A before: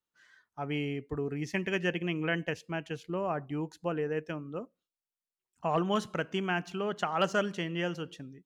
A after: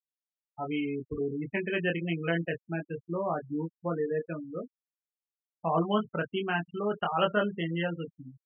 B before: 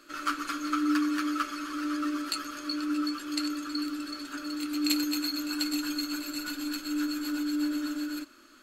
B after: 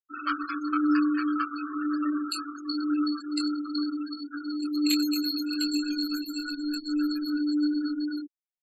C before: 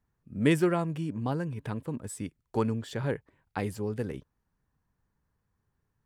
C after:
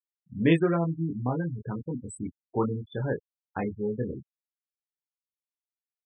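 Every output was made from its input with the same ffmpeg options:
-filter_complex "[0:a]asplit=2[a][b];[b]adelay=24,volume=-3dB[c];[a][c]amix=inputs=2:normalize=0,afftfilt=real='re*gte(hypot(re,im),0.0355)':imag='im*gte(hypot(re,im),0.0355)':win_size=1024:overlap=0.75"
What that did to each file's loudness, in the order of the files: +1.5, +2.5, +2.0 LU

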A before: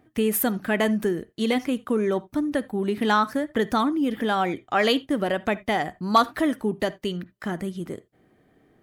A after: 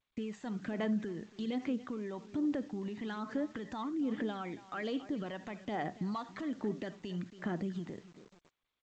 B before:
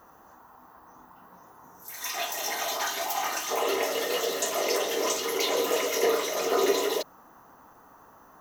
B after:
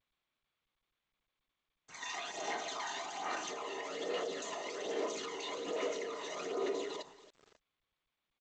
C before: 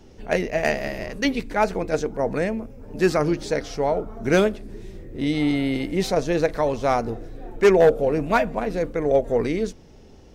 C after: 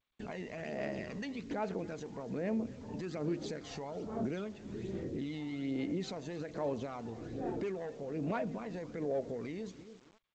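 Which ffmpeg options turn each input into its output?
-filter_complex "[0:a]asplit=2[a][b];[b]volume=15dB,asoftclip=hard,volume=-15dB,volume=-7dB[c];[a][c]amix=inputs=2:normalize=0,agate=range=-40dB:threshold=-37dB:ratio=16:detection=peak,highpass=170,lowshelf=f=330:g=6.5,bandreject=f=5.4k:w=9,acompressor=threshold=-25dB:ratio=8,equalizer=f=5.9k:w=2.3:g=-3,alimiter=level_in=0.5dB:limit=-24dB:level=0:latency=1:release=58,volume=-0.5dB,asplit=2[d][e];[e]aecho=0:1:278|556:0.133|0.0293[f];[d][f]amix=inputs=2:normalize=0,aphaser=in_gain=1:out_gain=1:delay=1.1:decay=0.47:speed=1.2:type=sinusoidal,acrusher=bits=8:mix=0:aa=0.000001,volume=-7.5dB" -ar 16000 -c:a g722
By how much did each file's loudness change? -13.5, -12.0, -16.5 LU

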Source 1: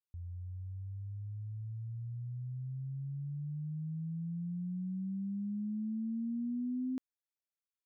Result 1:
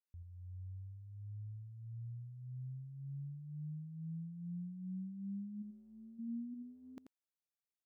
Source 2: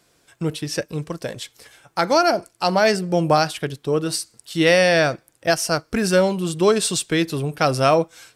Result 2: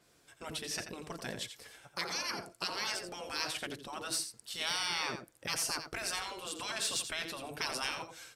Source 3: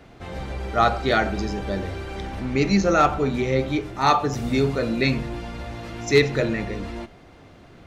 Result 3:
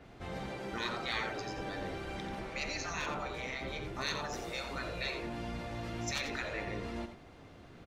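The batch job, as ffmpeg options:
-af "afftfilt=real='re*lt(hypot(re,im),0.2)':imag='im*lt(hypot(re,im),0.2)':win_size=1024:overlap=0.75,asoftclip=type=tanh:threshold=-12.5dB,aecho=1:1:86:0.355,adynamicequalizer=threshold=0.00891:dfrequency=3700:dqfactor=0.7:tfrequency=3700:tqfactor=0.7:attack=5:release=100:ratio=0.375:range=2:mode=cutabove:tftype=highshelf,volume=-6.5dB"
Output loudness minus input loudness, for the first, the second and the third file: -7.5, -16.5, -15.5 LU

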